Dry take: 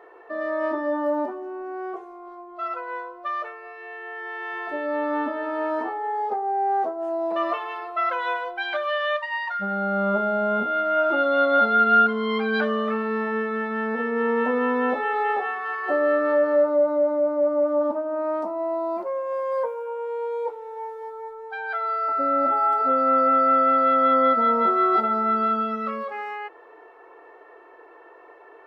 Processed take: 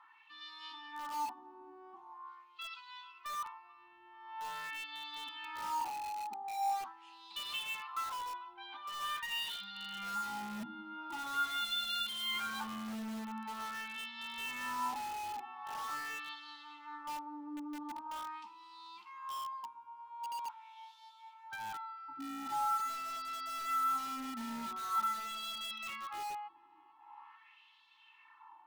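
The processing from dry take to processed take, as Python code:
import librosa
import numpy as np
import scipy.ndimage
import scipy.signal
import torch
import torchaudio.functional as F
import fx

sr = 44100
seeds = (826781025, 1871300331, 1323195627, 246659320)

p1 = fx.curve_eq(x, sr, hz=(120.0, 420.0, 760.0, 1700.0, 3500.0), db=(0, -19, 4, -10, -1))
p2 = fx.echo_split(p1, sr, split_hz=730.0, low_ms=93, high_ms=440, feedback_pct=52, wet_db=-16)
p3 = fx.wah_lfo(p2, sr, hz=0.44, low_hz=400.0, high_hz=3800.0, q=2.7)
p4 = scipy.signal.sosfilt(scipy.signal.ellip(3, 1.0, 40, [340.0, 880.0], 'bandstop', fs=sr, output='sos'), p3)
p5 = fx.band_shelf(p4, sr, hz=840.0, db=-13.0, octaves=2.8)
p6 = (np.mod(10.0 ** (50.0 / 20.0) * p5 + 1.0, 2.0) - 1.0) / 10.0 ** (50.0 / 20.0)
p7 = p5 + (p6 * 10.0 ** (-6.5 / 20.0))
y = p7 * 10.0 ** (10.5 / 20.0)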